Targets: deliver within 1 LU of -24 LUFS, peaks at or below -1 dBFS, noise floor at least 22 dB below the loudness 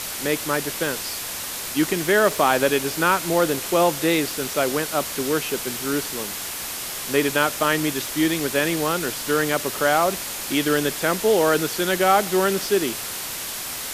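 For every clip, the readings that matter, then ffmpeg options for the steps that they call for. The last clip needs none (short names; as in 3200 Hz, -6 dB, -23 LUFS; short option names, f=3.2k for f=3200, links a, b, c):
noise floor -31 dBFS; noise floor target -44 dBFS; loudness -22.0 LUFS; peak -4.0 dBFS; loudness target -24.0 LUFS
-> -af "afftdn=nr=13:nf=-31"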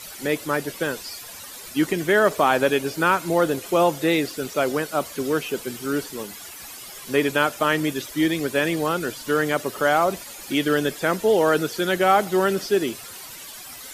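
noise floor -39 dBFS; noise floor target -45 dBFS
-> -af "afftdn=nr=6:nf=-39"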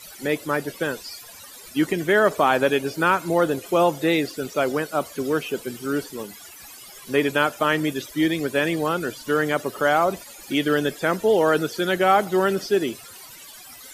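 noise floor -43 dBFS; noise floor target -45 dBFS
-> -af "afftdn=nr=6:nf=-43"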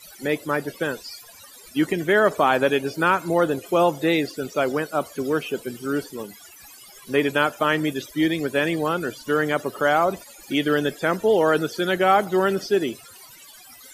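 noise floor -46 dBFS; loudness -22.5 LUFS; peak -5.0 dBFS; loudness target -24.0 LUFS
-> -af "volume=-1.5dB"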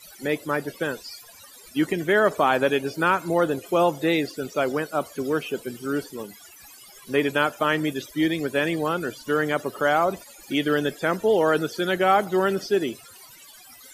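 loudness -24.0 LUFS; peak -6.5 dBFS; noise floor -48 dBFS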